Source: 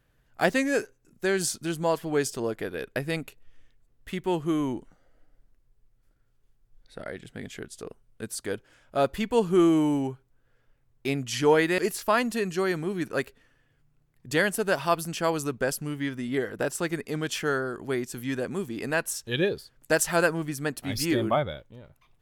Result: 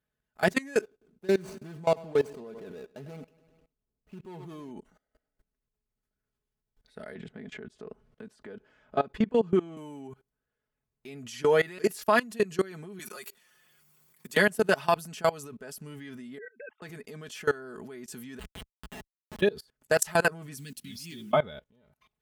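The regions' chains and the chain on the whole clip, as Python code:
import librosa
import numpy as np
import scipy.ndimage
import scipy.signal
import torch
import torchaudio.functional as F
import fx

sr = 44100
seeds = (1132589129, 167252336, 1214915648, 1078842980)

y = fx.chain(x, sr, fx.median_filter(points=25),
    fx.echo_feedback(ms=102, feedback_pct=54, wet_db=-17.5), at=(0.81, 4.71))
y = fx.chain(y, sr, fx.spacing_loss(db_at_10k=21),
    fx.band_squash(depth_pct=70), at=(7.15, 9.77))
y = fx.chain(y, sr, fx.riaa(side='recording'),
    fx.comb(ms=5.6, depth=0.77),
    fx.band_squash(depth_pct=40), at=(12.99, 14.37))
y = fx.chain(y, sr, fx.sine_speech(),
    fx.lowpass(hz=1300.0, slope=6),
    fx.peak_eq(hz=430.0, db=-12.5, octaves=1.0), at=(16.38, 16.82))
y = fx.chain(y, sr, fx.highpass(hz=56.0, slope=12),
    fx.freq_invert(carrier_hz=3400),
    fx.schmitt(flips_db=-23.0), at=(18.39, 19.41))
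y = fx.chain(y, sr, fx.cheby1_bandstop(low_hz=200.0, high_hz=3200.0, order=2),
    fx.low_shelf(hz=78.0, db=-12.0),
    fx.mod_noise(seeds[0], snr_db=23), at=(20.57, 21.33))
y = scipy.signal.sosfilt(scipy.signal.butter(2, 56.0, 'highpass', fs=sr, output='sos'), y)
y = y + 0.64 * np.pad(y, (int(4.7 * sr / 1000.0), 0))[:len(y)]
y = fx.level_steps(y, sr, step_db=22)
y = y * librosa.db_to_amplitude(1.5)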